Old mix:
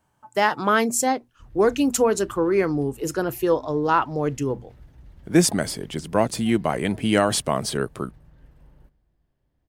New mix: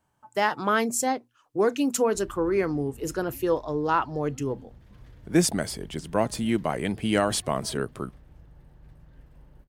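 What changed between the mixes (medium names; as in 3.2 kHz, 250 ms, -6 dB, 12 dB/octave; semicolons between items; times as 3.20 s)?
speech -4.0 dB; background: entry +0.75 s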